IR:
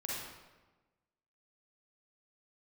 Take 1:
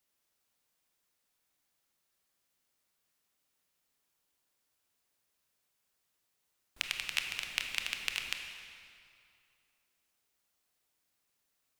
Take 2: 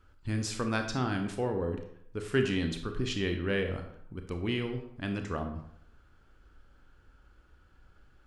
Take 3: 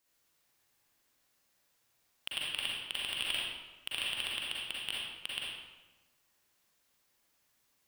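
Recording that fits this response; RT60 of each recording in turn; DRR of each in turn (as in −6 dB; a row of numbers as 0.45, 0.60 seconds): 3; 2.5, 0.70, 1.2 seconds; 3.5, 5.0, −5.5 decibels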